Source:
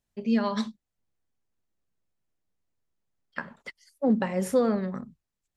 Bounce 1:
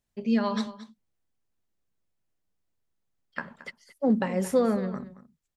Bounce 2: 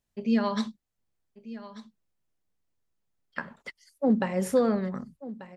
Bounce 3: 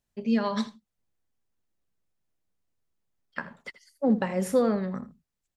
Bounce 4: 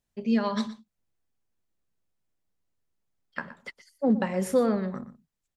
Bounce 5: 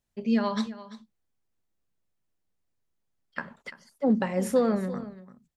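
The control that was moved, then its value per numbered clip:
single-tap delay, delay time: 224, 1,189, 81, 120, 341 milliseconds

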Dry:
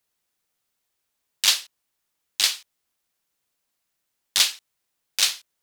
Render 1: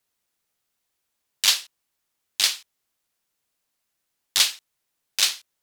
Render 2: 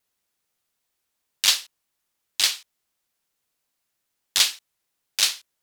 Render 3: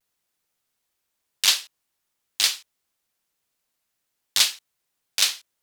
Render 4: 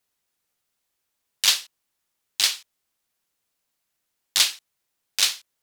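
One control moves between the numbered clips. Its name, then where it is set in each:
pitch vibrato, speed: 12, 2.7, 0.5, 5.1 Hertz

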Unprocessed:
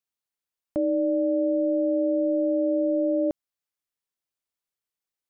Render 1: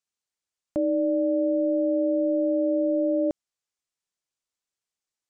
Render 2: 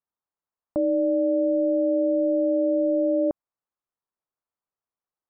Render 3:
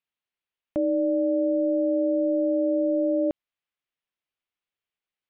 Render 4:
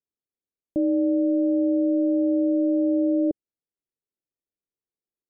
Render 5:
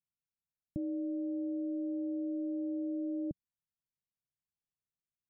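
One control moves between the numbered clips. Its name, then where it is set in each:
low-pass with resonance, frequency: 7,400, 1,100, 2,900, 400, 160 Hertz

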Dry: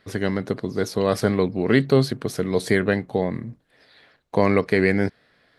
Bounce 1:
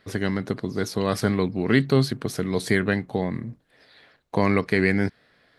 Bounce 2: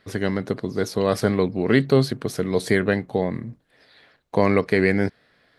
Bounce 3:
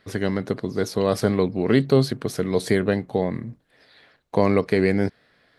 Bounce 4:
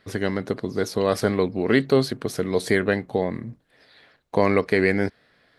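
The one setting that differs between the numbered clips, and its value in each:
dynamic equaliser, frequency: 530, 6,500, 1,800, 140 Hertz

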